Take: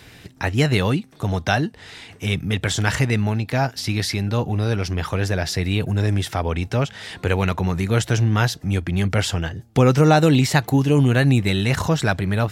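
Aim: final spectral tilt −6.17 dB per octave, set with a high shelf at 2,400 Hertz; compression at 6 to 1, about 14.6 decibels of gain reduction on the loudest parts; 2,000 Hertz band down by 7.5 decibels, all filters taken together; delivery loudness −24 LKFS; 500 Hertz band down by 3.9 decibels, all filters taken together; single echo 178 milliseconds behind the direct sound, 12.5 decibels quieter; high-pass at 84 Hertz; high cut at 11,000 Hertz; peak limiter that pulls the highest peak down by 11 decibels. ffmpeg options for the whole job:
ffmpeg -i in.wav -af "highpass=84,lowpass=11000,equalizer=frequency=500:width_type=o:gain=-4,equalizer=frequency=2000:width_type=o:gain=-5.5,highshelf=frequency=2400:gain=-9,acompressor=threshold=-29dB:ratio=6,alimiter=level_in=4dB:limit=-24dB:level=0:latency=1,volume=-4dB,aecho=1:1:178:0.237,volume=13.5dB" out.wav

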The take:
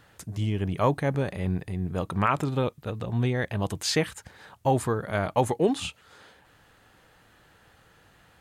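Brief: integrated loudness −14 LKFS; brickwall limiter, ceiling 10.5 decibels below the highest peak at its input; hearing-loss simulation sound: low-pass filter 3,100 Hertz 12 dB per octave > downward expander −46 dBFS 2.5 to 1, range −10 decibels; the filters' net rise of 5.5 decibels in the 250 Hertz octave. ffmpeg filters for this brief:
ffmpeg -i in.wav -af "equalizer=frequency=250:width_type=o:gain=7,alimiter=limit=-18dB:level=0:latency=1,lowpass=3100,agate=range=-10dB:threshold=-46dB:ratio=2.5,volume=15.5dB" out.wav

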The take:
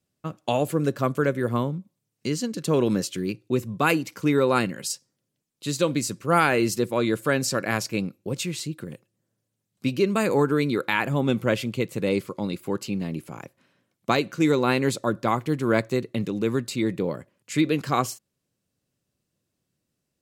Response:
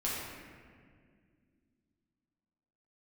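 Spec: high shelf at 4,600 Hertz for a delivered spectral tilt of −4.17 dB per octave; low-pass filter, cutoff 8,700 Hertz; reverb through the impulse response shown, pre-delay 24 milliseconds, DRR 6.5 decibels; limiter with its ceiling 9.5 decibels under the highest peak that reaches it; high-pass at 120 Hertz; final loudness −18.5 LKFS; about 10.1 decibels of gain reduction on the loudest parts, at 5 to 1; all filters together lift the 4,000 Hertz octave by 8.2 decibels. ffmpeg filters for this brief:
-filter_complex "[0:a]highpass=120,lowpass=8700,equalizer=frequency=4000:width_type=o:gain=7.5,highshelf=frequency=4600:gain=5,acompressor=threshold=-27dB:ratio=5,alimiter=limit=-19.5dB:level=0:latency=1,asplit=2[link_01][link_02];[1:a]atrim=start_sample=2205,adelay=24[link_03];[link_02][link_03]afir=irnorm=-1:irlink=0,volume=-12dB[link_04];[link_01][link_04]amix=inputs=2:normalize=0,volume=13dB"

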